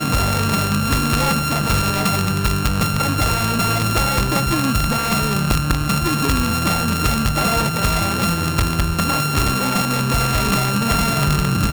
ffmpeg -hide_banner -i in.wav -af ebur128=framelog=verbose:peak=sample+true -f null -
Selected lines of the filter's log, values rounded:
Integrated loudness:
  I:         -18.1 LUFS
  Threshold: -28.0 LUFS
Loudness range:
  LRA:         0.2 LU
  Threshold: -38.1 LUFS
  LRA low:   -18.2 LUFS
  LRA high:  -18.0 LUFS
Sample peak:
  Peak:      -10.0 dBFS
True peak:
  Peak:       -7.8 dBFS